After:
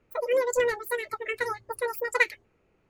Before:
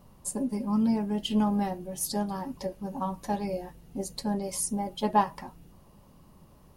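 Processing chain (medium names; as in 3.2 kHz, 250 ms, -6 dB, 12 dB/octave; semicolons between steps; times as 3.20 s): level-controlled noise filter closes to 2.2 kHz, open at -23.5 dBFS; spectral noise reduction 15 dB; speed mistake 33 rpm record played at 78 rpm; trim +2 dB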